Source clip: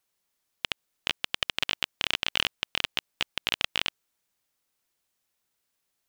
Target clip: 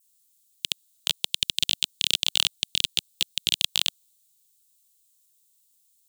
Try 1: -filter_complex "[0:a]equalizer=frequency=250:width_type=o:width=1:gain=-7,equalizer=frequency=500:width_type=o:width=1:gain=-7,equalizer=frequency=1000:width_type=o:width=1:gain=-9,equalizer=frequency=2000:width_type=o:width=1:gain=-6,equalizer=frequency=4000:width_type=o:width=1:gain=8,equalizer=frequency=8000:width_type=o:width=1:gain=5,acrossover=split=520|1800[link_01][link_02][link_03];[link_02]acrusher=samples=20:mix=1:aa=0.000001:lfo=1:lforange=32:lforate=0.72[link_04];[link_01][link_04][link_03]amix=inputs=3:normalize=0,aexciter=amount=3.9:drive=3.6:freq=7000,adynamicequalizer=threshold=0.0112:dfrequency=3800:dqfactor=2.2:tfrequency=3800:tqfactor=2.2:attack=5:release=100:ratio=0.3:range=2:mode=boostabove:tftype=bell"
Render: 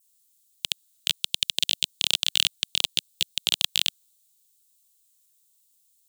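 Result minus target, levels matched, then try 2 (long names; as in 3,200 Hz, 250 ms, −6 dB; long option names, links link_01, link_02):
sample-and-hold swept by an LFO: distortion −18 dB
-filter_complex "[0:a]equalizer=frequency=250:width_type=o:width=1:gain=-7,equalizer=frequency=500:width_type=o:width=1:gain=-7,equalizer=frequency=1000:width_type=o:width=1:gain=-9,equalizer=frequency=2000:width_type=o:width=1:gain=-6,equalizer=frequency=4000:width_type=o:width=1:gain=8,equalizer=frequency=8000:width_type=o:width=1:gain=5,acrossover=split=520|1800[link_01][link_02][link_03];[link_02]acrusher=samples=53:mix=1:aa=0.000001:lfo=1:lforange=84.8:lforate=0.72[link_04];[link_01][link_04][link_03]amix=inputs=3:normalize=0,aexciter=amount=3.9:drive=3.6:freq=7000,adynamicequalizer=threshold=0.0112:dfrequency=3800:dqfactor=2.2:tfrequency=3800:tqfactor=2.2:attack=5:release=100:ratio=0.3:range=2:mode=boostabove:tftype=bell"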